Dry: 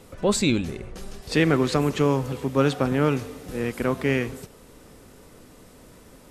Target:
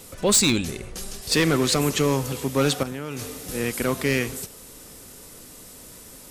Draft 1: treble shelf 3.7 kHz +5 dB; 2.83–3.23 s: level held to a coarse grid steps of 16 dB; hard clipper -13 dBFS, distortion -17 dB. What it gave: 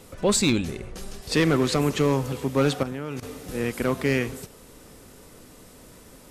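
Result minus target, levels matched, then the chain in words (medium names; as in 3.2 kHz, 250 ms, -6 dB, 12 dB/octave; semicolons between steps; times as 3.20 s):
8 kHz band -5.5 dB
treble shelf 3.7 kHz +16 dB; 2.83–3.23 s: level held to a coarse grid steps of 16 dB; hard clipper -13 dBFS, distortion -13 dB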